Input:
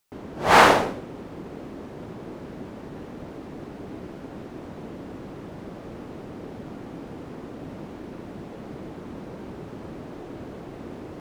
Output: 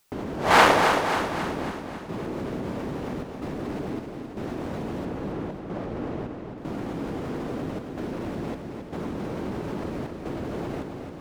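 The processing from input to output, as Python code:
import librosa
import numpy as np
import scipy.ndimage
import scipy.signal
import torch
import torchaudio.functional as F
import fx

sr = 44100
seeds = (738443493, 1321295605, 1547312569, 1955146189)

p1 = fx.lowpass(x, sr, hz=2400.0, slope=6, at=(5.05, 6.58))
p2 = fx.over_compress(p1, sr, threshold_db=-40.0, ratio=-1.0)
p3 = p1 + (p2 * 10.0 ** (-2.0 / 20.0))
p4 = fx.step_gate(p3, sr, bpm=79, pattern='xxxxx.xxx..x', floor_db=-12.0, edge_ms=4.5)
p5 = p4 + fx.echo_feedback(p4, sr, ms=270, feedback_pct=54, wet_db=-7, dry=0)
y = fx.transformer_sat(p5, sr, knee_hz=1400.0)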